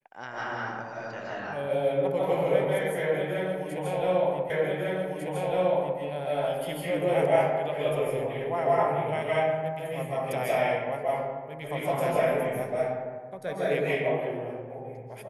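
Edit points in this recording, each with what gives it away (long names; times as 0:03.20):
0:04.50: the same again, the last 1.5 s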